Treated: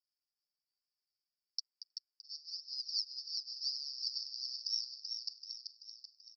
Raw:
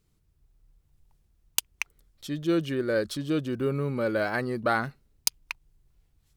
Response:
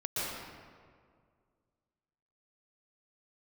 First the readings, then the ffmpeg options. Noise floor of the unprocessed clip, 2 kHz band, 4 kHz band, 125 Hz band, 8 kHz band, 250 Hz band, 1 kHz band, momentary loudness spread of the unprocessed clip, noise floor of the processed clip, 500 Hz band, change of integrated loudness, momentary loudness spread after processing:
-70 dBFS, under -40 dB, +1.5 dB, under -40 dB, -15.5 dB, under -40 dB, under -40 dB, 11 LU, under -85 dBFS, under -40 dB, -10.5 dB, 13 LU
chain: -af "aecho=1:1:7.5:0.73,acrusher=samples=37:mix=1:aa=0.000001:lfo=1:lforange=37:lforate=1,aeval=exprs='0.501*(cos(1*acos(clip(val(0)/0.501,-1,1)))-cos(1*PI/2))+0.141*(cos(5*acos(clip(val(0)/0.501,-1,1)))-cos(5*PI/2))+0.126*(cos(7*acos(clip(val(0)/0.501,-1,1)))-cos(7*PI/2))':c=same,asuperpass=centerf=5000:order=8:qfactor=4.9,aecho=1:1:384|768|1152|1536|1920|2304|2688:0.531|0.281|0.149|0.079|0.0419|0.0222|0.0118,volume=5.5dB"

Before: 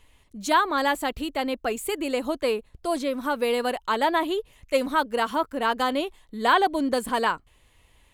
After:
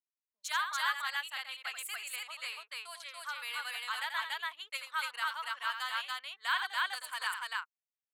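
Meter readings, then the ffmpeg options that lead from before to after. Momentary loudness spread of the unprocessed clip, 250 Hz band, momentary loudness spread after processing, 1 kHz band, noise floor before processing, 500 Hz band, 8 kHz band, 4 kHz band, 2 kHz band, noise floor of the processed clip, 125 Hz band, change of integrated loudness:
8 LU, under -40 dB, 9 LU, -13.5 dB, -61 dBFS, -33.0 dB, -5.5 dB, -4.5 dB, -5.0 dB, under -85 dBFS, n/a, -10.5 dB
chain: -filter_complex "[0:a]anlmdn=2.51,highpass=f=1.3k:w=0.5412,highpass=f=1.3k:w=1.3066,asplit=2[a][b];[b]aecho=0:1:84.55|285.7:0.398|0.891[c];[a][c]amix=inputs=2:normalize=0,volume=-7dB"

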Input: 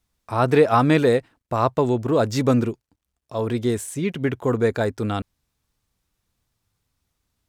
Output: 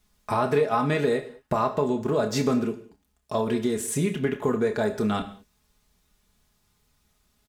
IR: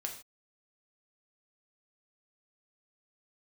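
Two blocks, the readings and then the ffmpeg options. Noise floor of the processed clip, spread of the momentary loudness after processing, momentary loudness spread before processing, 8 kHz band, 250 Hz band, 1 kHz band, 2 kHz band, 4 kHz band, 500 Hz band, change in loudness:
-70 dBFS, 7 LU, 12 LU, +2.0 dB, -4.0 dB, -4.0 dB, -4.0 dB, -2.5 dB, -4.0 dB, -4.0 dB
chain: -filter_complex "[0:a]aecho=1:1:4.8:0.61,acompressor=threshold=-29dB:ratio=4,asplit=2[a][b];[1:a]atrim=start_sample=2205,asetrate=37044,aresample=44100,adelay=28[c];[b][c]afir=irnorm=-1:irlink=0,volume=-7.5dB[d];[a][d]amix=inputs=2:normalize=0,volume=5.5dB"

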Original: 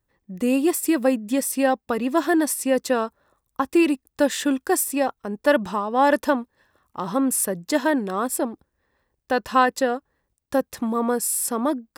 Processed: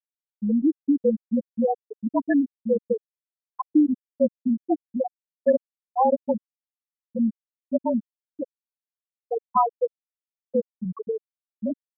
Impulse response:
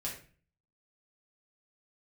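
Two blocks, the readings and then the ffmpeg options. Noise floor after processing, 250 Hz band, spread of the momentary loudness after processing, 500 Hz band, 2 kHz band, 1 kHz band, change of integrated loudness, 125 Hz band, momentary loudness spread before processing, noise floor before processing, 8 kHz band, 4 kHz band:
under -85 dBFS, -2.0 dB, 10 LU, -3.0 dB, -16.5 dB, -4.0 dB, -3.0 dB, n/a, 7 LU, -78 dBFS, under -40 dB, under -40 dB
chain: -af "afreqshift=-37,afftfilt=real='re*gte(hypot(re,im),0.794)':imag='im*gte(hypot(re,im),0.794)':win_size=1024:overlap=0.75"

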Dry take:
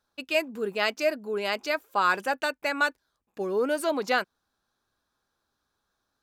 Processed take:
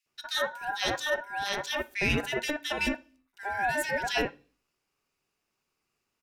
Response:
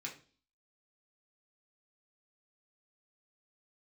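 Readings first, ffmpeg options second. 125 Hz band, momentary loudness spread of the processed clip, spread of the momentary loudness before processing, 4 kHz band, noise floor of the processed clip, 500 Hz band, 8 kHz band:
n/a, 6 LU, 5 LU, +1.5 dB, -82 dBFS, -6.5 dB, +3.0 dB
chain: -filter_complex "[0:a]aeval=exprs='val(0)*sin(2*PI*1200*n/s)':c=same,acrossover=split=2000[a][b];[a]adelay=60[c];[c][b]amix=inputs=2:normalize=0,asplit=2[d][e];[1:a]atrim=start_sample=2205,highshelf=f=4k:g=9.5[f];[e][f]afir=irnorm=-1:irlink=0,volume=-11dB[g];[d][g]amix=inputs=2:normalize=0"

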